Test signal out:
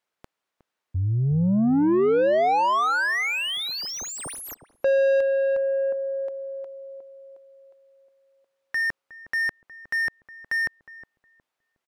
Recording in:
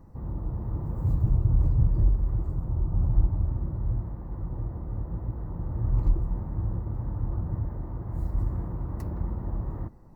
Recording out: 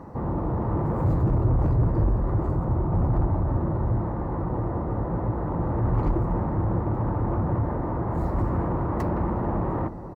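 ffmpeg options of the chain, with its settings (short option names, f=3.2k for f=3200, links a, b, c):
-filter_complex "[0:a]asplit=2[a][b];[b]highpass=f=720:p=1,volume=31dB,asoftclip=type=tanh:threshold=-10dB[c];[a][c]amix=inputs=2:normalize=0,lowpass=f=1k:p=1,volume=-6dB,asplit=2[d][e];[e]adelay=363,lowpass=f=810:p=1,volume=-12dB,asplit=2[f][g];[g]adelay=363,lowpass=f=810:p=1,volume=0.32,asplit=2[h][i];[i]adelay=363,lowpass=f=810:p=1,volume=0.32[j];[d][f][h][j]amix=inputs=4:normalize=0,volume=-2dB"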